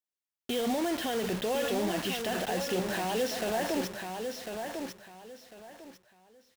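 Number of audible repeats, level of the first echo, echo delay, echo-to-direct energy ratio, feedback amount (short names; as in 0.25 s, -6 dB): 3, -6.0 dB, 1.049 s, -5.5 dB, 25%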